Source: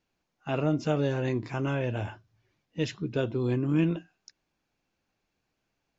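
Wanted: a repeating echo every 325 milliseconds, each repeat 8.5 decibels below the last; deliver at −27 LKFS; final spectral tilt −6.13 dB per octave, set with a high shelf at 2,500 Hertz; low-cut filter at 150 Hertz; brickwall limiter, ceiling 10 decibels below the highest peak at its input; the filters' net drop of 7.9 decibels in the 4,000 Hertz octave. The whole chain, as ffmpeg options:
ffmpeg -i in.wav -af "highpass=150,highshelf=frequency=2500:gain=-4,equalizer=frequency=4000:width_type=o:gain=-8,alimiter=level_in=2dB:limit=-24dB:level=0:latency=1,volume=-2dB,aecho=1:1:325|650|975|1300:0.376|0.143|0.0543|0.0206,volume=9.5dB" out.wav

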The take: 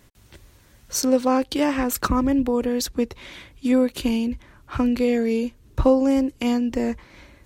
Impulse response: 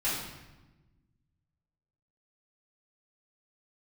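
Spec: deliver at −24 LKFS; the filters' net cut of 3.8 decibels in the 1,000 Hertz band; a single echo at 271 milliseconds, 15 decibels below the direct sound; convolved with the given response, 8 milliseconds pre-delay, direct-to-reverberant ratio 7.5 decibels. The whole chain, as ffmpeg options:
-filter_complex "[0:a]equalizer=frequency=1000:width_type=o:gain=-5,aecho=1:1:271:0.178,asplit=2[link_01][link_02];[1:a]atrim=start_sample=2205,adelay=8[link_03];[link_02][link_03]afir=irnorm=-1:irlink=0,volume=-16dB[link_04];[link_01][link_04]amix=inputs=2:normalize=0,volume=-2.5dB"

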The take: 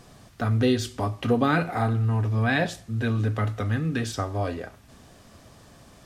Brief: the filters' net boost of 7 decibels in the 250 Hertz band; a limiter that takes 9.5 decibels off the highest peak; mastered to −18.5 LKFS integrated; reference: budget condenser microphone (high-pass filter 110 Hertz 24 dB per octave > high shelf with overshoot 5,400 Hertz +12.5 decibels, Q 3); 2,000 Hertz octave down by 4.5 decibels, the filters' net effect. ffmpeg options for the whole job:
ffmpeg -i in.wav -af "equalizer=frequency=250:width_type=o:gain=8,equalizer=frequency=2000:width_type=o:gain=-4.5,alimiter=limit=-14.5dB:level=0:latency=1,highpass=frequency=110:width=0.5412,highpass=frequency=110:width=1.3066,highshelf=frequency=5400:width_type=q:width=3:gain=12.5,volume=6dB" out.wav

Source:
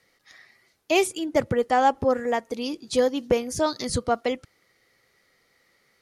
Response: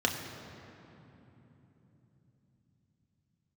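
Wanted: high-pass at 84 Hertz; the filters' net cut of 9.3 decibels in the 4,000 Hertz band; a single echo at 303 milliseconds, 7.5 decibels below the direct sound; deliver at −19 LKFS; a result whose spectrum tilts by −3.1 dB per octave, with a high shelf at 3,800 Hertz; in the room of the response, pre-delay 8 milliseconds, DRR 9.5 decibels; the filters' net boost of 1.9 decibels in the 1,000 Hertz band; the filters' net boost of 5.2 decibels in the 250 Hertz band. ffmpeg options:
-filter_complex "[0:a]highpass=84,equalizer=frequency=250:width_type=o:gain=6,equalizer=frequency=1000:width_type=o:gain=3,highshelf=frequency=3800:gain=-6.5,equalizer=frequency=4000:width_type=o:gain=-9,aecho=1:1:303:0.422,asplit=2[link_01][link_02];[1:a]atrim=start_sample=2205,adelay=8[link_03];[link_02][link_03]afir=irnorm=-1:irlink=0,volume=-19dB[link_04];[link_01][link_04]amix=inputs=2:normalize=0,volume=1.5dB"

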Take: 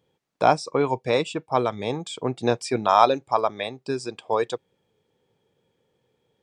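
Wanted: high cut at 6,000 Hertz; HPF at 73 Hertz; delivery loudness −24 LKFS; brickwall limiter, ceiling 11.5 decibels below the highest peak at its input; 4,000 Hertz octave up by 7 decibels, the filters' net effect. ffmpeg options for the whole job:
ffmpeg -i in.wav -af "highpass=73,lowpass=6000,equalizer=frequency=4000:width_type=o:gain=9,volume=2.5dB,alimiter=limit=-9dB:level=0:latency=1" out.wav

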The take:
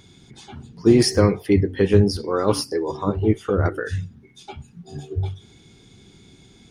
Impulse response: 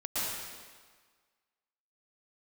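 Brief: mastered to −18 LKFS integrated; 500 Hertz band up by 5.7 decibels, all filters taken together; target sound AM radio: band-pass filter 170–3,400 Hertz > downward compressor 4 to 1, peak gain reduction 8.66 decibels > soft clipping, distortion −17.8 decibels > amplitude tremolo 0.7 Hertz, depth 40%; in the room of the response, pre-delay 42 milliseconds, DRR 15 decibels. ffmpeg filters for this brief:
-filter_complex "[0:a]equalizer=frequency=500:width_type=o:gain=7.5,asplit=2[link_01][link_02];[1:a]atrim=start_sample=2205,adelay=42[link_03];[link_02][link_03]afir=irnorm=-1:irlink=0,volume=-22dB[link_04];[link_01][link_04]amix=inputs=2:normalize=0,highpass=170,lowpass=3400,acompressor=threshold=-16dB:ratio=4,asoftclip=threshold=-12dB,tremolo=f=0.7:d=0.4,volume=8dB"

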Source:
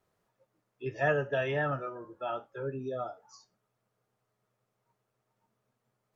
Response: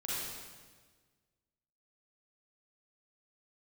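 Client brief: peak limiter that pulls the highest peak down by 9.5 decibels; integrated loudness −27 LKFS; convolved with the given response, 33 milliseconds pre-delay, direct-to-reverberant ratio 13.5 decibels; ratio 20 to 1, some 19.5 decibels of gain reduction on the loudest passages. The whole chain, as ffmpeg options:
-filter_complex "[0:a]acompressor=threshold=-42dB:ratio=20,alimiter=level_in=17.5dB:limit=-24dB:level=0:latency=1,volume=-17.5dB,asplit=2[link_01][link_02];[1:a]atrim=start_sample=2205,adelay=33[link_03];[link_02][link_03]afir=irnorm=-1:irlink=0,volume=-17dB[link_04];[link_01][link_04]amix=inputs=2:normalize=0,volume=24dB"

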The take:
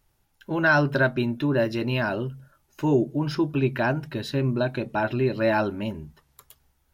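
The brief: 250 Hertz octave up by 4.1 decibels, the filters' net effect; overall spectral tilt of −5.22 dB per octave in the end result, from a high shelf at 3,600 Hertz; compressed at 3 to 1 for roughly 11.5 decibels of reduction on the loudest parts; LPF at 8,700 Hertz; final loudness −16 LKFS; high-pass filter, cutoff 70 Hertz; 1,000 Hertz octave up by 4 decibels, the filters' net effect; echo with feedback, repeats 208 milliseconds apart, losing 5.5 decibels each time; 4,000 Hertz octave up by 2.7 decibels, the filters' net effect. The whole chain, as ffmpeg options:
ffmpeg -i in.wav -af "highpass=70,lowpass=8700,equalizer=frequency=250:width_type=o:gain=5,equalizer=frequency=1000:width_type=o:gain=5,highshelf=frequency=3600:gain=-4.5,equalizer=frequency=4000:width_type=o:gain=6,acompressor=threshold=-29dB:ratio=3,aecho=1:1:208|416|624|832|1040|1248|1456:0.531|0.281|0.149|0.079|0.0419|0.0222|0.0118,volume=14dB" out.wav

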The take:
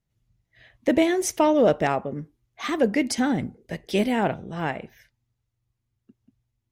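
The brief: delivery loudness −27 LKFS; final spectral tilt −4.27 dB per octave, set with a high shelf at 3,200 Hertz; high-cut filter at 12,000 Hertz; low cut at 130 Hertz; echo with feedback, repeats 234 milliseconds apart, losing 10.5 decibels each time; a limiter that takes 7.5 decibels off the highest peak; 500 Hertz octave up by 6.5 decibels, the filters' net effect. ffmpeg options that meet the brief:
ffmpeg -i in.wav -af "highpass=130,lowpass=12000,equalizer=frequency=500:width_type=o:gain=8,highshelf=frequency=3200:gain=4.5,alimiter=limit=-10dB:level=0:latency=1,aecho=1:1:234|468|702:0.299|0.0896|0.0269,volume=-5dB" out.wav

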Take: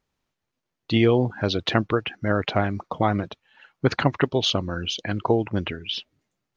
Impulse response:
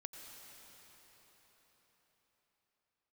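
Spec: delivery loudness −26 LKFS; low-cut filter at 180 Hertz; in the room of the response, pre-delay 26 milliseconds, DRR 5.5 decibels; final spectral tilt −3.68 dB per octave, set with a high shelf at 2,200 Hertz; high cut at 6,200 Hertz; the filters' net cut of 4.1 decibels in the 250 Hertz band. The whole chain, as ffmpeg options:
-filter_complex "[0:a]highpass=180,lowpass=6200,equalizer=frequency=250:width_type=o:gain=-4,highshelf=frequency=2200:gain=-5,asplit=2[link_01][link_02];[1:a]atrim=start_sample=2205,adelay=26[link_03];[link_02][link_03]afir=irnorm=-1:irlink=0,volume=-2dB[link_04];[link_01][link_04]amix=inputs=2:normalize=0"

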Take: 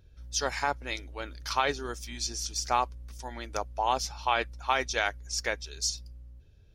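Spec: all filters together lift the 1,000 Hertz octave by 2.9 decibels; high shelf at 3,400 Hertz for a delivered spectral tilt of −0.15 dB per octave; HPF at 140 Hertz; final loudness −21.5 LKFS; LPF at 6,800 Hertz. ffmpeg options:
ffmpeg -i in.wav -af "highpass=140,lowpass=6800,equalizer=frequency=1000:width_type=o:gain=3,highshelf=frequency=3400:gain=6.5,volume=7dB" out.wav

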